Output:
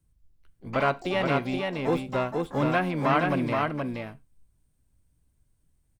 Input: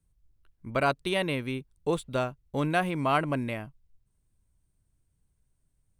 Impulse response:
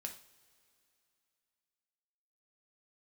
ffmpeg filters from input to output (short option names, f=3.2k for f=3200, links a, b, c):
-filter_complex "[0:a]asplit=3[a][b][c];[b]asetrate=66075,aresample=44100,atempo=0.66742,volume=-10dB[d];[c]asetrate=88200,aresample=44100,atempo=0.5,volume=-13dB[e];[a][d][e]amix=inputs=3:normalize=0,acrossover=split=3100[f][g];[g]acompressor=threshold=-52dB:ratio=4:attack=1:release=60[h];[f][h]amix=inputs=2:normalize=0,aecho=1:1:474:0.668,asplit=2[i][j];[1:a]atrim=start_sample=2205,atrim=end_sample=6174,asetrate=52920,aresample=44100[k];[j][k]afir=irnorm=-1:irlink=0,volume=-1.5dB[l];[i][l]amix=inputs=2:normalize=0,volume=-2dB"